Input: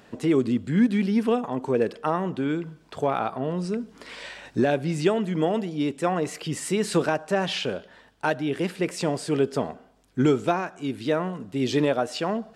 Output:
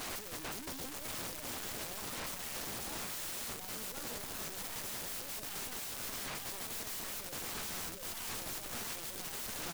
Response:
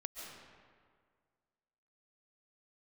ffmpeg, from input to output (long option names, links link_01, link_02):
-filter_complex "[0:a]asplit=2[link_01][link_02];[link_02]adelay=905,lowpass=frequency=1100:poles=1,volume=-8dB,asplit=2[link_03][link_04];[link_04]adelay=905,lowpass=frequency=1100:poles=1,volume=0.41,asplit=2[link_05][link_06];[link_06]adelay=905,lowpass=frequency=1100:poles=1,volume=0.41,asplit=2[link_07][link_08];[link_08]adelay=905,lowpass=frequency=1100:poles=1,volume=0.41,asplit=2[link_09][link_10];[link_10]adelay=905,lowpass=frequency=1100:poles=1,volume=0.41[link_11];[link_03][link_05][link_07][link_09][link_11]amix=inputs=5:normalize=0[link_12];[link_01][link_12]amix=inputs=2:normalize=0,asetrate=56889,aresample=44100,lowshelf=frequency=240:gain=-7.5,aeval=exprs='(tanh(89.1*val(0)+0.65)-tanh(0.65))/89.1':channel_layout=same,aeval=exprs='0.0178*sin(PI/2*7.94*val(0)/0.0178)':channel_layout=same,bass=frequency=250:gain=11,treble=frequency=4000:gain=11,afftdn=noise_reduction=15:noise_floor=-40,acrusher=bits=4:mode=log:mix=0:aa=0.000001,aeval=exprs='(mod(47.3*val(0)+1,2)-1)/47.3':channel_layout=same,volume=-3dB"